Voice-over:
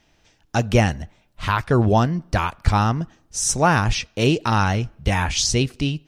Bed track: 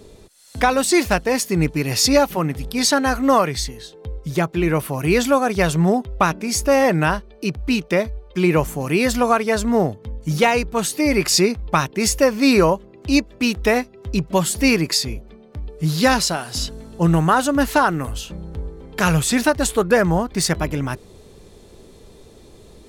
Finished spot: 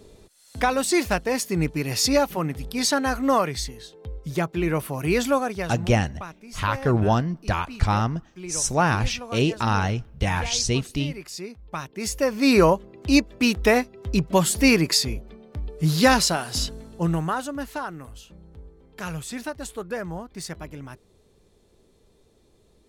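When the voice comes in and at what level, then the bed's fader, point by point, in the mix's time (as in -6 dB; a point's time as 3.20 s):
5.15 s, -3.5 dB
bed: 5.37 s -5 dB
5.94 s -20 dB
11.39 s -20 dB
12.64 s -1 dB
16.58 s -1 dB
17.71 s -15 dB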